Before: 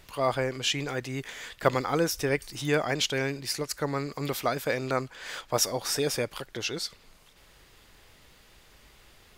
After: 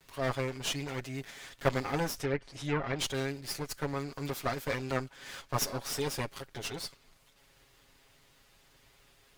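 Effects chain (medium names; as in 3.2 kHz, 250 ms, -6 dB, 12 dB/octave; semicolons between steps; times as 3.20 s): comb filter that takes the minimum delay 7.3 ms; 2.16–2.99 s: low-pass that closes with the level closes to 1.8 kHz, closed at -21.5 dBFS; trim -5 dB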